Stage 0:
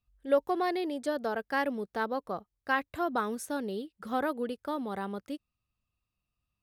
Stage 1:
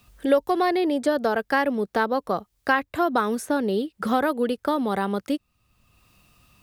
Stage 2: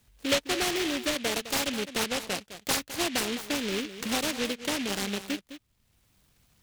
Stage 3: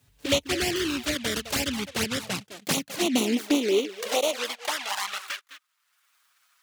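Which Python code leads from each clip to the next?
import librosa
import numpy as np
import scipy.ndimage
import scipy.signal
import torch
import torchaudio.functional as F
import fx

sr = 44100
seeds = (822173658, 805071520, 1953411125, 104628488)

y1 = fx.band_squash(x, sr, depth_pct=70)
y1 = y1 * 10.0 ** (8.5 / 20.0)
y2 = y1 + 10.0 ** (-12.5 / 20.0) * np.pad(y1, (int(209 * sr / 1000.0), 0))[:len(y1)]
y2 = fx.noise_mod_delay(y2, sr, seeds[0], noise_hz=2600.0, depth_ms=0.26)
y2 = y2 * 10.0 ** (-7.0 / 20.0)
y3 = fx.filter_sweep_highpass(y2, sr, from_hz=72.0, to_hz=1300.0, start_s=1.73, end_s=5.29, q=2.9)
y3 = fx.env_flanger(y3, sr, rest_ms=7.4, full_db=-22.5)
y3 = y3 * 10.0 ** (4.0 / 20.0)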